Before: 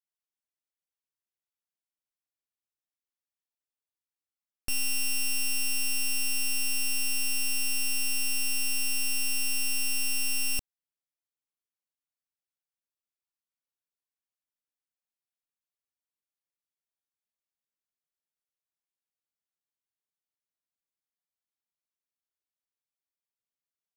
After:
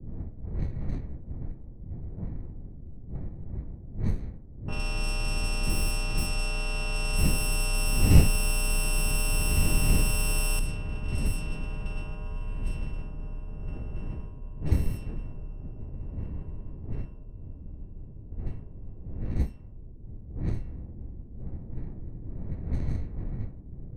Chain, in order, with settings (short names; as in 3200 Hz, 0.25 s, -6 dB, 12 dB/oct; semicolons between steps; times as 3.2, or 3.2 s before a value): wind noise 120 Hz -31 dBFS; diffused feedback echo 1.578 s, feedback 50%, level -9 dB; in parallel at -8 dB: sample-and-hold 21×; on the sum: frequency shift -31 Hz; low-pass opened by the level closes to 310 Hz, open at -18 dBFS; Doppler distortion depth 0.15 ms; gain -3 dB